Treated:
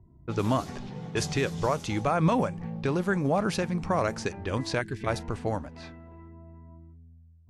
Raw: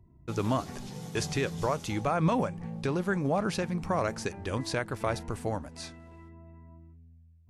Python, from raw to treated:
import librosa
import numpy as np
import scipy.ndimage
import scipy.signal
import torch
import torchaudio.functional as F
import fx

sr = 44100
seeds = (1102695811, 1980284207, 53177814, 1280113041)

y = fx.spec_box(x, sr, start_s=4.81, length_s=0.26, low_hz=450.0, high_hz=1500.0, gain_db=-19)
y = fx.env_lowpass(y, sr, base_hz=1200.0, full_db=-26.0)
y = y * 10.0 ** (2.5 / 20.0)